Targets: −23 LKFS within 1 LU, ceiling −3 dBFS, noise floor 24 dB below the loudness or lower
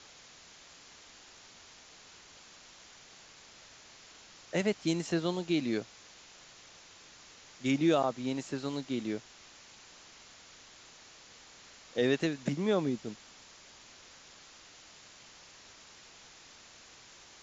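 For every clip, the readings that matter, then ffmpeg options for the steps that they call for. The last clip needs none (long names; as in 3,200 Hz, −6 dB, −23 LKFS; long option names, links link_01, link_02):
background noise floor −56 dBFS; target noise floor −57 dBFS; integrated loudness −32.5 LKFS; sample peak −16.5 dBFS; target loudness −23.0 LKFS
→ -af "afftdn=noise_reduction=6:noise_floor=-56"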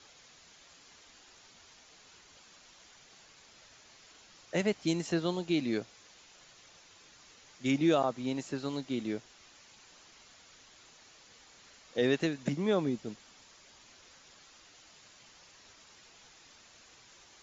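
background noise floor −59 dBFS; integrated loudness −32.5 LKFS; sample peak −16.5 dBFS; target loudness −23.0 LKFS
→ -af "volume=9.5dB"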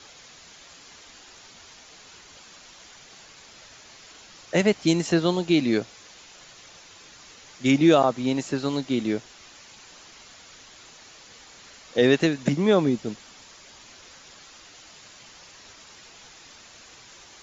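integrated loudness −23.0 LKFS; sample peak −7.0 dBFS; background noise floor −49 dBFS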